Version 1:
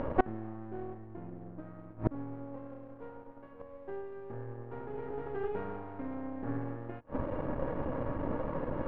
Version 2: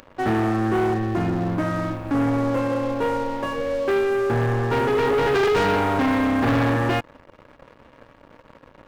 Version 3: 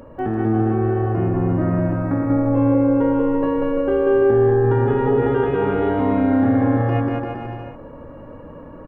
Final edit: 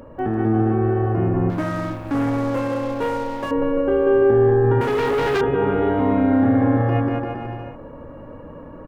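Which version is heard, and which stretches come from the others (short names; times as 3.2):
3
1.5–3.51 from 2
4.81–5.41 from 2
not used: 1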